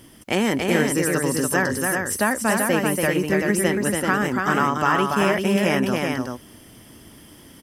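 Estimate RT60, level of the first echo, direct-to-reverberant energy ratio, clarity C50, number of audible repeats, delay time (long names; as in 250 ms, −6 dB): no reverb audible, −4.0 dB, no reverb audible, no reverb audible, 2, 285 ms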